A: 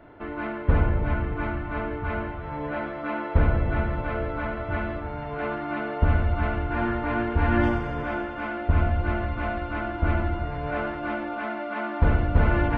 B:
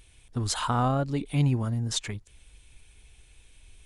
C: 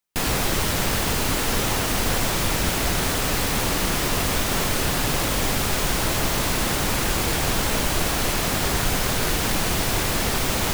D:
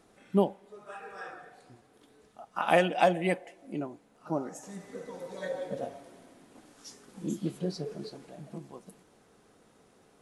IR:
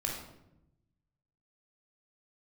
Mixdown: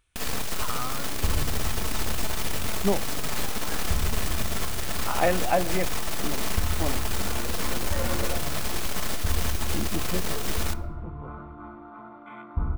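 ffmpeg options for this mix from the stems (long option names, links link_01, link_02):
-filter_complex "[0:a]afwtdn=0.0316,aecho=1:1:0.9:0.77,adelay=550,volume=-14.5dB,asplit=2[link_01][link_02];[link_02]volume=-10.5dB[link_03];[1:a]equalizer=frequency=1300:width=1.9:gain=13.5,volume=-15.5dB[link_04];[2:a]aecho=1:1:4.6:0.41,aeval=exprs='0.447*(cos(1*acos(clip(val(0)/0.447,-1,1)))-cos(1*PI/2))+0.178*(cos(8*acos(clip(val(0)/0.447,-1,1)))-cos(8*PI/2))':channel_layout=same,volume=-16dB,asplit=2[link_05][link_06];[link_06]volume=-16.5dB[link_07];[3:a]lowpass=frequency=2600:width=0.5412,lowpass=frequency=2600:width=1.3066,adelay=2500,volume=0dB[link_08];[4:a]atrim=start_sample=2205[link_09];[link_03][link_07]amix=inputs=2:normalize=0[link_10];[link_10][link_09]afir=irnorm=-1:irlink=0[link_11];[link_01][link_04][link_05][link_08][link_11]amix=inputs=5:normalize=0"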